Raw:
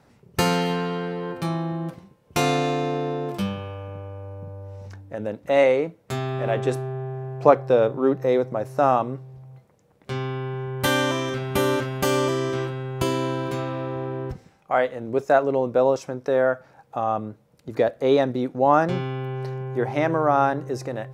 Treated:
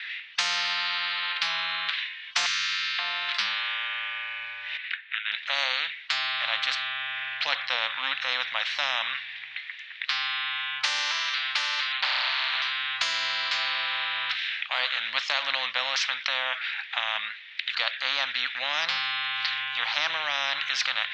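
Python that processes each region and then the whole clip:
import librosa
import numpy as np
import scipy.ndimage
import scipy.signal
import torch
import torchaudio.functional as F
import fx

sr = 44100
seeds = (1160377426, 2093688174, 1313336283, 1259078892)

y = fx.chain(x, sr, fx.cheby2_bandstop(low_hz=340.0, high_hz=680.0, order=4, stop_db=70),
    fx.peak_eq(hz=130.0, db=6.0, octaves=0.36), at=(2.46, 2.99))
y = fx.chain(y, sr, fx.highpass(hz=1200.0, slope=24),
    fx.air_absorb(metres=400.0), at=(4.77, 5.32))
y = fx.chain(y, sr, fx.savgol(points=25),
    fx.doppler_dist(depth_ms=0.44), at=(11.92, 12.62))
y = scipy.signal.sosfilt(scipy.signal.ellip(3, 1.0, 70, [1800.0, 3700.0], 'bandpass', fs=sr, output='sos'), y)
y = fx.rider(y, sr, range_db=10, speed_s=2.0)
y = fx.spectral_comp(y, sr, ratio=10.0)
y = F.gain(torch.from_numpy(y), 4.5).numpy()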